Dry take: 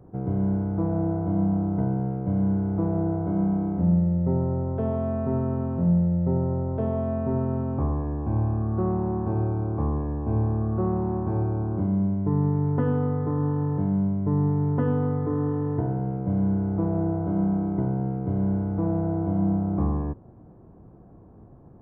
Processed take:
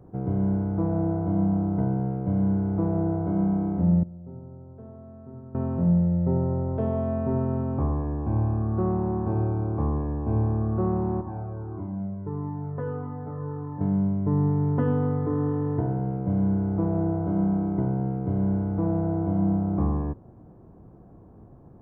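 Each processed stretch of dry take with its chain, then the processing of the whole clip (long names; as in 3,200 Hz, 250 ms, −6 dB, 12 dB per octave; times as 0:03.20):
0:04.03–0:05.55: low-pass filter 1,000 Hz 6 dB per octave + tuned comb filter 120 Hz, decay 0.98 s, mix 90%
0:11.21–0:13.81: low-pass filter 1,700 Hz + spectral tilt +1.5 dB per octave + flanger whose copies keep moving one way falling 1.6 Hz
whole clip: no processing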